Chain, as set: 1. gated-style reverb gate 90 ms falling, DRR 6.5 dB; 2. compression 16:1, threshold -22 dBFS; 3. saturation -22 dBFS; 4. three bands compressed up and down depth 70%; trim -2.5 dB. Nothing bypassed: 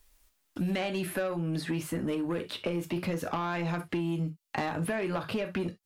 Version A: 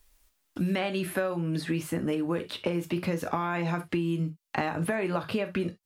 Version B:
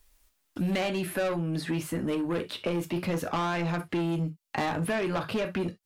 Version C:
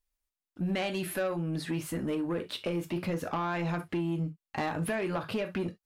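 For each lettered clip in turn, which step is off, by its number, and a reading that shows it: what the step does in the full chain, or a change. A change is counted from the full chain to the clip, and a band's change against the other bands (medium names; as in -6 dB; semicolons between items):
3, distortion -15 dB; 2, mean gain reduction 3.0 dB; 4, crest factor change -8.0 dB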